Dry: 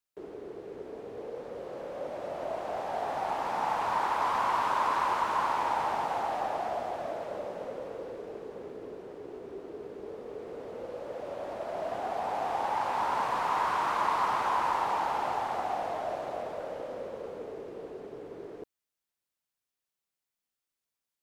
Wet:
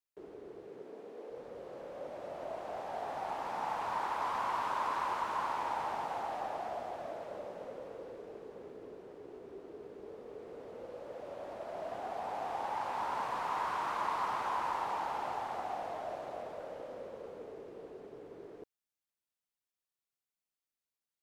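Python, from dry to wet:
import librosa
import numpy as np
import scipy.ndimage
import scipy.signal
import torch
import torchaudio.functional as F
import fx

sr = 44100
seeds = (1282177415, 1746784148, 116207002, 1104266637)

y = fx.highpass(x, sr, hz=fx.line((0.67, 92.0), (1.29, 240.0)), slope=24, at=(0.67, 1.29), fade=0.02)
y = y * librosa.db_to_amplitude(-6.5)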